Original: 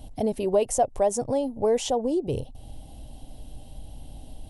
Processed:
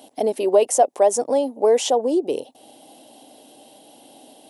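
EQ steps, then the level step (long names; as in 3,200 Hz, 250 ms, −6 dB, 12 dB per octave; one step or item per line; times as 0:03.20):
high-pass filter 290 Hz 24 dB per octave
+6.5 dB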